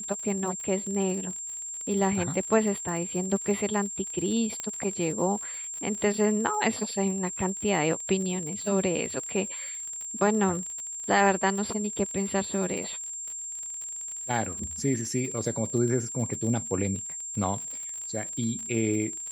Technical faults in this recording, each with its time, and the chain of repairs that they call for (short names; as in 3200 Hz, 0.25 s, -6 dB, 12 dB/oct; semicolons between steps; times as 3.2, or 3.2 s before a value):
crackle 48/s -34 dBFS
tone 7400 Hz -34 dBFS
4.6 pop -17 dBFS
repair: de-click; notch 7400 Hz, Q 30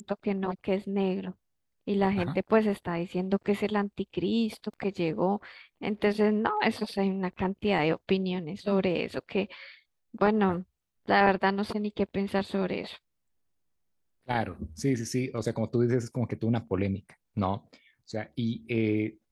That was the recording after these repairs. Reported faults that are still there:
none